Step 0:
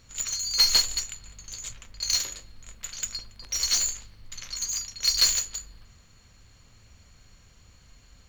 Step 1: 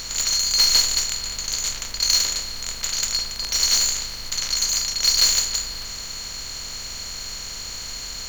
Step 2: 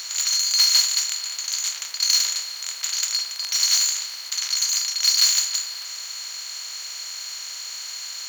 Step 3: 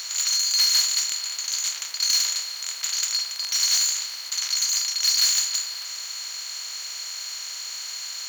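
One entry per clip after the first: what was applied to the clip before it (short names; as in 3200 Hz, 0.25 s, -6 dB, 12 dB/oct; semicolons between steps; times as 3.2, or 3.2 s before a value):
per-bin compression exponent 0.4
Bessel high-pass 1200 Hz, order 2
soft clip -13.5 dBFS, distortion -16 dB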